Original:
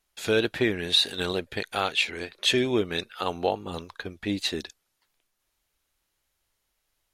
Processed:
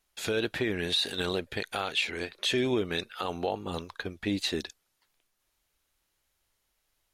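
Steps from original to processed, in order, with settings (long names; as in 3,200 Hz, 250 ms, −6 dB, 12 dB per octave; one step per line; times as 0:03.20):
brickwall limiter −18 dBFS, peak gain reduction 8.5 dB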